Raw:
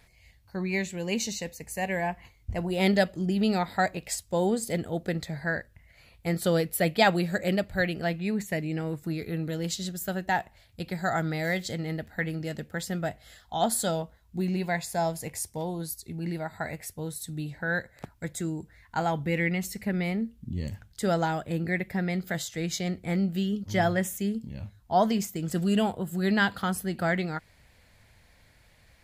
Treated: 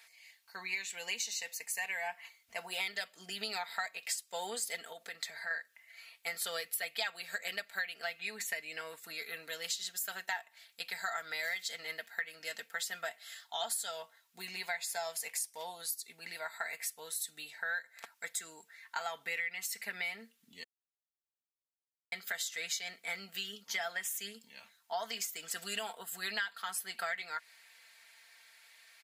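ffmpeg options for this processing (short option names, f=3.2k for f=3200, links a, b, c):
-filter_complex "[0:a]asettb=1/sr,asplit=3[a][b][c];[a]atrim=end=4.924[d];[b]atrim=start=4.92:end=5.51,asetpts=PTS-STARTPTS,afade=t=in:d=0.004:c=qsin,afade=t=out:st=0.586:d=0.004:c=qsin,acompressor=threshold=-32dB:ratio=6:attack=3.2:release=140:knee=1:detection=peak[e];[c]atrim=start=5.506[f];[d][e]acrossfade=d=0.004:c1=hsin:c2=qsin[g];[g][f]acrossfade=d=0.004:c1=qsin:c2=hsin,asplit=3[h][i][j];[h]atrim=end=20.64,asetpts=PTS-STARTPTS,afade=t=out:st=20.636:d=0.004:c=hsin[k];[i]atrim=start=20.64:end=22.12,asetpts=PTS-STARTPTS,volume=0[l];[j]atrim=start=22.12,asetpts=PTS-STARTPTS,afade=t=in:d=0.004:c=hsin[m];[k][l][m]concat=n=3:v=0:a=1,highpass=1.4k,aecho=1:1:4.4:0.64,acompressor=threshold=-37dB:ratio=6,volume=3dB"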